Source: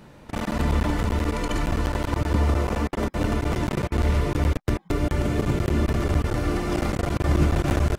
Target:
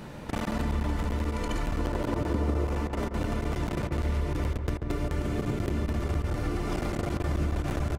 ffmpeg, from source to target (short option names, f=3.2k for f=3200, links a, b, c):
-filter_complex "[0:a]asettb=1/sr,asplit=3[a][b][c];[a]atrim=end=1.794[d];[b]atrim=start=1.79:end=2.65,asetpts=PTS-STARTPTS,afade=t=in:d=0.004:c=qsin,afade=t=out:st=0.856:d=0.004:c=qsin,equalizer=f=360:w=0.56:g=7[e];[c]atrim=start=2.646[f];[d][e]acrossfade=d=0.004:c1=hsin:c2=qsin[g];[g][f]acrossfade=d=0.004:c1=qsin:c2=hsin,asplit=2[h][i];[i]adelay=137,lowpass=f=1.4k:p=1,volume=-6.5dB,asplit=2[j][k];[k]adelay=137,lowpass=f=1.4k:p=1,volume=0.38,asplit=2[l][m];[m]adelay=137,lowpass=f=1.4k:p=1,volume=0.38,asplit=2[n][o];[o]adelay=137,lowpass=f=1.4k:p=1,volume=0.38[p];[h][j][l][n][p]amix=inputs=5:normalize=0,acompressor=threshold=-36dB:ratio=3,volume=5.5dB"